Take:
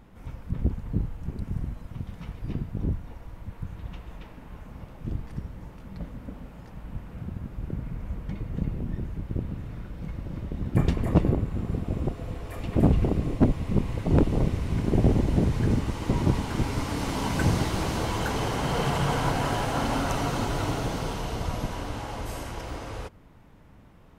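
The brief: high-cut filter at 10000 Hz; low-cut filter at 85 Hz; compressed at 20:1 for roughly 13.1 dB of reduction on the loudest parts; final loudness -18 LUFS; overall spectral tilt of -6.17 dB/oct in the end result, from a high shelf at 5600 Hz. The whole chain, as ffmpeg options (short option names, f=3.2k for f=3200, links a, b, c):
-af "highpass=85,lowpass=10k,highshelf=f=5.6k:g=-7.5,acompressor=threshold=-28dB:ratio=20,volume=17.5dB"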